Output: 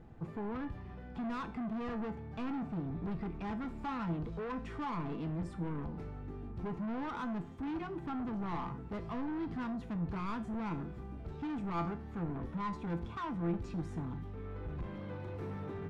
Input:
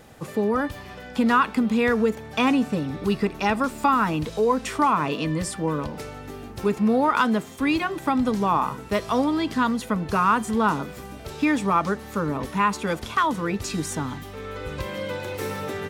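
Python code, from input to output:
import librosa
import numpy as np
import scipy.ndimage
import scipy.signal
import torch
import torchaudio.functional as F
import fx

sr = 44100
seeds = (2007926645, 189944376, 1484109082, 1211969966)

y = fx.tilt_eq(x, sr, slope=-3.0)
y = 10.0 ** (-23.5 / 20.0) * np.tanh(y / 10.0 ** (-23.5 / 20.0))
y = fx.lowpass(y, sr, hz=1700.0, slope=6)
y = fx.peak_eq(y, sr, hz=550.0, db=-11.5, octaves=0.25)
y = fx.comb_fb(y, sr, f0_hz=170.0, decay_s=0.38, harmonics='all', damping=0.0, mix_pct=70)
y = y * librosa.db_to_amplitude(-2.5)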